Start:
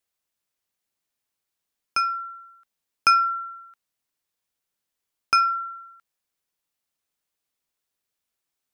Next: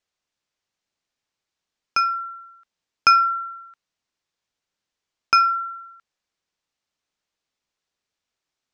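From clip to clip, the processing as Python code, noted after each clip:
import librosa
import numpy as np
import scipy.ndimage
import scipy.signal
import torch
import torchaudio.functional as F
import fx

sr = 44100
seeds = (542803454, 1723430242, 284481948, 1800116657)

y = scipy.signal.sosfilt(scipy.signal.butter(4, 6800.0, 'lowpass', fs=sr, output='sos'), x)
y = y * 10.0 ** (3.0 / 20.0)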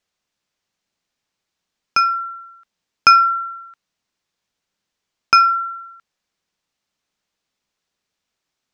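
y = fx.peak_eq(x, sr, hz=190.0, db=4.5, octaves=0.57)
y = y * 10.0 ** (4.5 / 20.0)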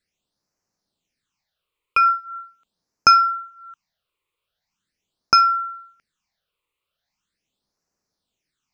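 y = fx.phaser_stages(x, sr, stages=8, low_hz=210.0, high_hz=3300.0, hz=0.41, feedback_pct=30)
y = y * 10.0 ** (1.0 / 20.0)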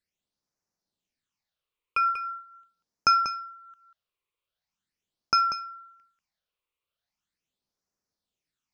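y = x + 10.0 ** (-9.5 / 20.0) * np.pad(x, (int(190 * sr / 1000.0), 0))[:len(x)]
y = y * 10.0 ** (-8.5 / 20.0)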